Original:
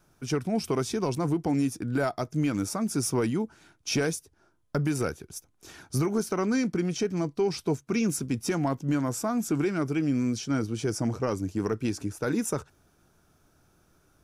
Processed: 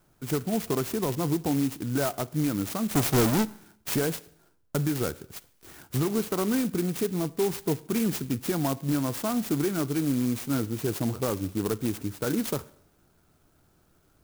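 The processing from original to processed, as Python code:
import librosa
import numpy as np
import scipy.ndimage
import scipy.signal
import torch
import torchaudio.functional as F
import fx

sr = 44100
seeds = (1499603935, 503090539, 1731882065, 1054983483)

y = fx.halfwave_hold(x, sr, at=(2.91, 3.43), fade=0.02)
y = fx.rev_schroeder(y, sr, rt60_s=0.69, comb_ms=33, drr_db=18.5)
y = fx.clock_jitter(y, sr, seeds[0], jitter_ms=0.091)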